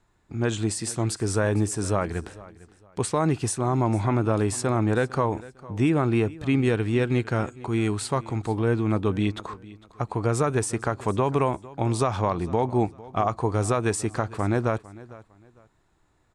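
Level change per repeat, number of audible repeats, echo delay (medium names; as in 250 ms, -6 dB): -11.5 dB, 2, 453 ms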